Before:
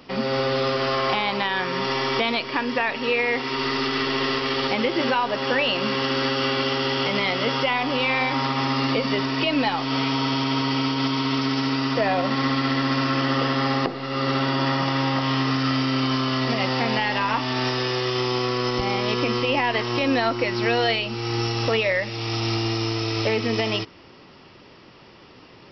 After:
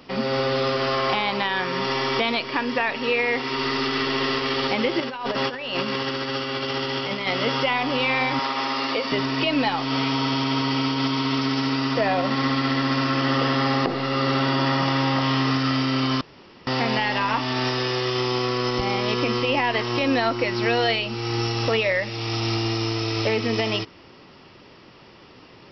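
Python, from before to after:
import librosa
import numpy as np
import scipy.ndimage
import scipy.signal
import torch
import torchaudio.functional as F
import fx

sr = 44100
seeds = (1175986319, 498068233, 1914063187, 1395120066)

y = fx.over_compress(x, sr, threshold_db=-26.0, ratio=-0.5, at=(5.0, 7.27))
y = fx.highpass(y, sr, hz=370.0, slope=12, at=(8.39, 9.12))
y = fx.env_flatten(y, sr, amount_pct=50, at=(13.25, 15.58))
y = fx.edit(y, sr, fx.room_tone_fill(start_s=16.21, length_s=0.46), tone=tone)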